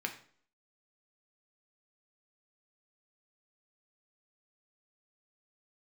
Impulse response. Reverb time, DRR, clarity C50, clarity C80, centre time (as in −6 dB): 0.50 s, 3.0 dB, 11.0 dB, 14.5 dB, 12 ms